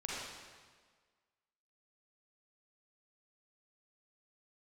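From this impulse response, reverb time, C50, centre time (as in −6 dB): 1.6 s, −3.5 dB, 112 ms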